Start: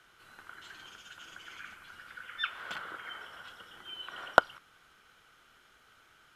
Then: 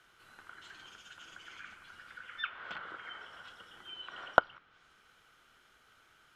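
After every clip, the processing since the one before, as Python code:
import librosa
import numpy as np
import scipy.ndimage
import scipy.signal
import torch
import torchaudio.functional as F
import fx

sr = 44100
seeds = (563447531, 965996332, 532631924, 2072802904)

y = fx.env_lowpass_down(x, sr, base_hz=3000.0, full_db=-35.5)
y = y * 10.0 ** (-2.5 / 20.0)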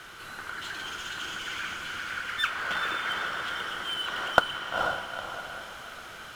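y = fx.power_curve(x, sr, exponent=0.7)
y = fx.echo_diffused(y, sr, ms=465, feedback_pct=43, wet_db=-3.5)
y = y * 10.0 ** (1.5 / 20.0)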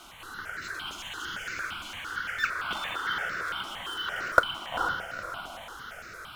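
y = fx.phaser_held(x, sr, hz=8.8, low_hz=470.0, high_hz=3200.0)
y = y * 10.0 ** (2.0 / 20.0)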